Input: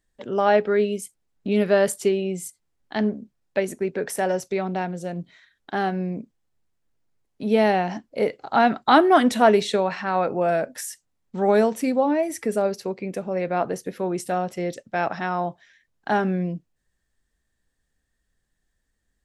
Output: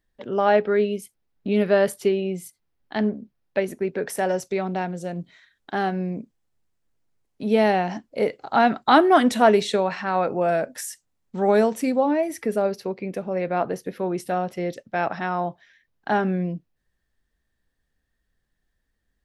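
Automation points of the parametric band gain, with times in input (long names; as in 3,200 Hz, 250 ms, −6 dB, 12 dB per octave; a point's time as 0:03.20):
parametric band 7,700 Hz 0.73 octaves
0:03.72 −10.5 dB
0:04.31 0 dB
0:11.99 0 dB
0:12.44 −9 dB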